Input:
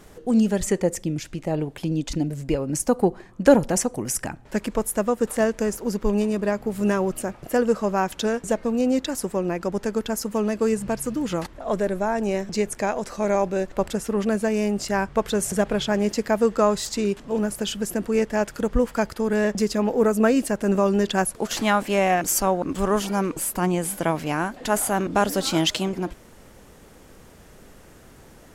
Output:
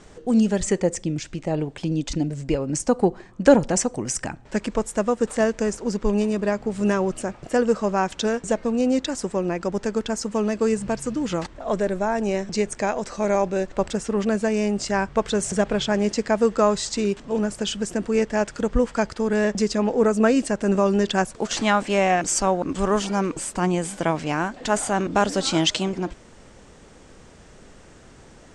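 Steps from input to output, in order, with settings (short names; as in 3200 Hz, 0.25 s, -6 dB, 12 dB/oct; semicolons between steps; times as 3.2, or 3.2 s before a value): elliptic low-pass 8500 Hz, stop band 70 dB; bell 5900 Hz +2 dB 0.26 oct; gain +1.5 dB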